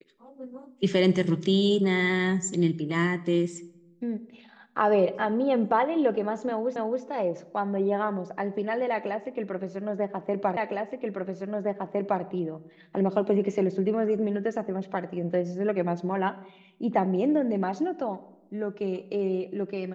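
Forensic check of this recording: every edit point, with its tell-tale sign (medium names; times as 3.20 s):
6.76 s: repeat of the last 0.27 s
10.57 s: repeat of the last 1.66 s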